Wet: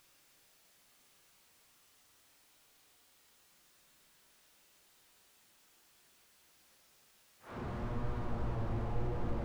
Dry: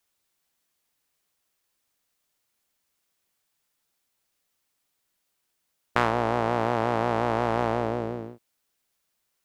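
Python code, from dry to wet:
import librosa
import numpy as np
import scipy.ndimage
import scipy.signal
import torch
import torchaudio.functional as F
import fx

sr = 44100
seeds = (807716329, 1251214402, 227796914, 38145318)

y = x + 10.0 ** (-4.5 / 20.0) * np.pad(x, (int(166 * sr / 1000.0), 0))[:len(x)]
y = fx.paulstretch(y, sr, seeds[0], factor=4.9, window_s=0.25, from_s=4.32)
y = fx.slew_limit(y, sr, full_power_hz=1.5)
y = F.gain(torch.from_numpy(y), 10.5).numpy()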